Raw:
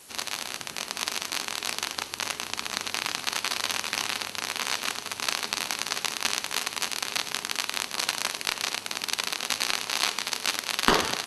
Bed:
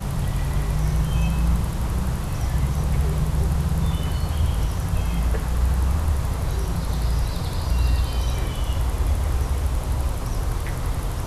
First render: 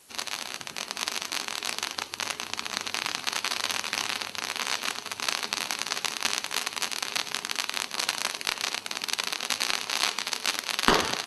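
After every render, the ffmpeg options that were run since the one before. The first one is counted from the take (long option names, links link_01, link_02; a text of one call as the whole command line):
ffmpeg -i in.wav -af "afftdn=noise_reduction=6:noise_floor=-42" out.wav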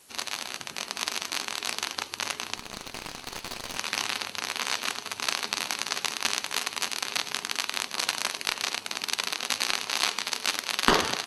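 ffmpeg -i in.wav -filter_complex "[0:a]asettb=1/sr,asplit=3[link_01][link_02][link_03];[link_01]atrim=end=2.574[link_04];[link_02]atrim=start=2.57:end=3.77,asetpts=PTS-STARTPTS,afade=type=in:duration=0.004:curve=qsin,afade=type=out:start_time=1.196:duration=0.004:curve=qsin,aeval=exprs='(tanh(20*val(0)+0.8)-tanh(0.8))/20':channel_layout=same[link_05];[link_03]atrim=start=3.766[link_06];[link_04][link_05]acrossfade=duration=0.004:curve1=hsin:curve2=qsin[link_07];[link_07][link_06]acrossfade=duration=0.004:curve1=qsin:curve2=hsin" out.wav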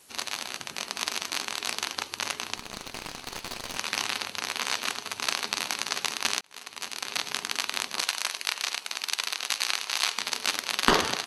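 ffmpeg -i in.wav -filter_complex "[0:a]asettb=1/sr,asplit=3[link_01][link_02][link_03];[link_01]atrim=end=8.024[link_04];[link_02]atrim=start=8.02:end=10.18,asetpts=PTS-STARTPTS,afade=type=in:duration=0.004:curve=qsin,afade=type=out:start_time=2.156:duration=0.004:curve=qsin,highpass=frequency=900:poles=1[link_05];[link_03]atrim=start=10.176[link_06];[link_04][link_05]acrossfade=duration=0.004:curve1=hsin:curve2=qsin[link_07];[link_07][link_06]acrossfade=duration=0.004:curve1=qsin:curve2=hsin,asplit=2[link_08][link_09];[link_08]atrim=end=6.41,asetpts=PTS-STARTPTS,afade=type=out:start_time=6.406:duration=0.004:curve=hsin[link_10];[link_09]atrim=start=6.41,asetpts=PTS-STARTPTS,afade=type=in:duration=0.88[link_11];[link_10][link_11]concat=n=2:v=0:a=1" out.wav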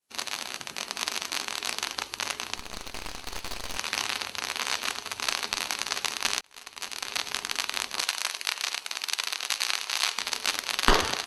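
ffmpeg -i in.wav -af "agate=range=-33dB:threshold=-41dB:ratio=3:detection=peak,asubboost=boost=6:cutoff=60" out.wav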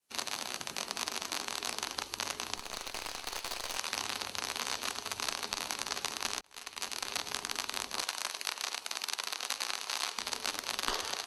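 ffmpeg -i in.wav -filter_complex "[0:a]acrossover=split=370|1400|3400[link_01][link_02][link_03][link_04];[link_01]acompressor=threshold=-50dB:ratio=4[link_05];[link_02]acompressor=threshold=-38dB:ratio=4[link_06];[link_03]acompressor=threshold=-44dB:ratio=4[link_07];[link_04]acompressor=threshold=-34dB:ratio=4[link_08];[link_05][link_06][link_07][link_08]amix=inputs=4:normalize=0" out.wav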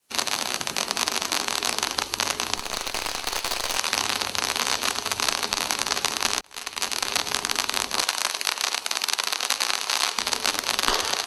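ffmpeg -i in.wav -af "volume=11.5dB,alimiter=limit=-3dB:level=0:latency=1" out.wav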